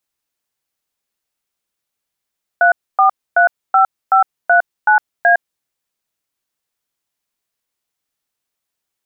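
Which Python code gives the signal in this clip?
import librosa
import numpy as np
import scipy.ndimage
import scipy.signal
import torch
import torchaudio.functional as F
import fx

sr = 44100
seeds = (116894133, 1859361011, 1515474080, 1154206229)

y = fx.dtmf(sr, digits='3435539A', tone_ms=109, gap_ms=268, level_db=-10.0)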